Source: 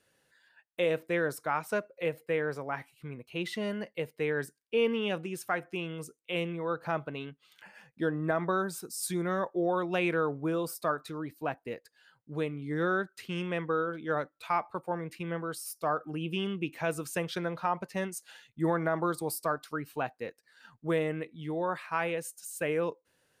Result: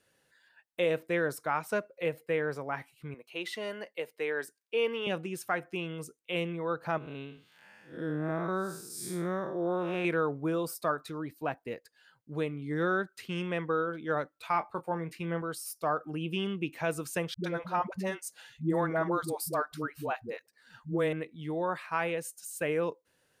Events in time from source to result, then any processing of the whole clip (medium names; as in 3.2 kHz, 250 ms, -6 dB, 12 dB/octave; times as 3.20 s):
3.14–5.07 s: high-pass 400 Hz
6.98–10.05 s: spectral blur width 178 ms
14.52–15.42 s: doubling 24 ms -10.5 dB
17.34–21.13 s: phase dispersion highs, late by 100 ms, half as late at 320 Hz